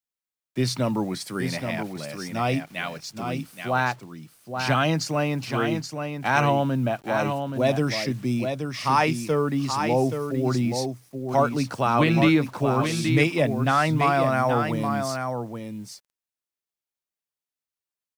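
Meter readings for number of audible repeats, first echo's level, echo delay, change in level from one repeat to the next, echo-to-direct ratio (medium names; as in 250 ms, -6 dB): 1, -6.5 dB, 826 ms, no regular repeats, -6.5 dB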